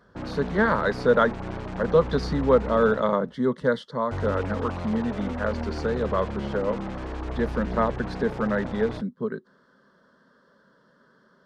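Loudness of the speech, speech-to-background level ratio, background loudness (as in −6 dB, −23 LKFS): −26.0 LKFS, 7.5 dB, −33.5 LKFS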